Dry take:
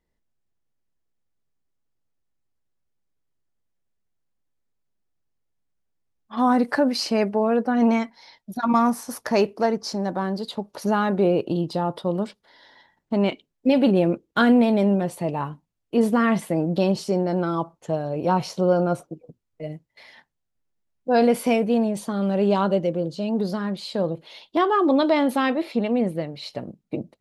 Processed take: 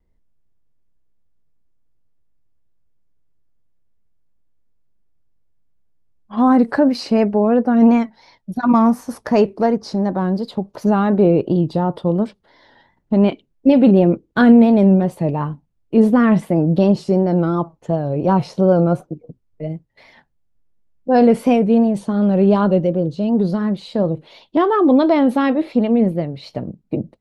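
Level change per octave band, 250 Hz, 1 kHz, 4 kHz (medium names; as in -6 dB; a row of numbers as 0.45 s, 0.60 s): +7.5 dB, +3.0 dB, -2.0 dB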